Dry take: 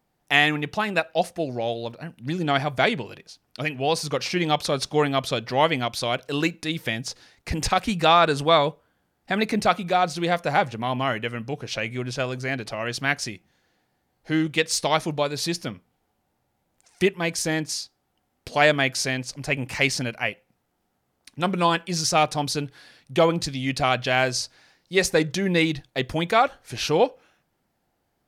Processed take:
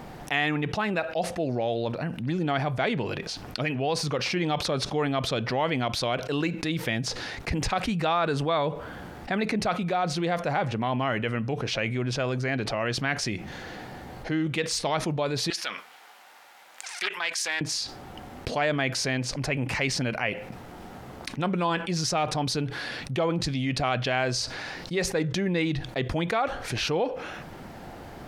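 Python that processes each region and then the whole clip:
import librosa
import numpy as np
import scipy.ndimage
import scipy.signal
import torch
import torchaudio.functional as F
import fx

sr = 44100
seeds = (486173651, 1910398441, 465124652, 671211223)

y = fx.chain(x, sr, fx.highpass(hz=1300.0, slope=12),
    fx.doppler_dist(depth_ms=0.25), at=(15.5, 17.61))
y = fx.lowpass(y, sr, hz=2700.0, slope=6)
y = fx.env_flatten(y, sr, amount_pct=70)
y = y * 10.0 ** (-8.5 / 20.0)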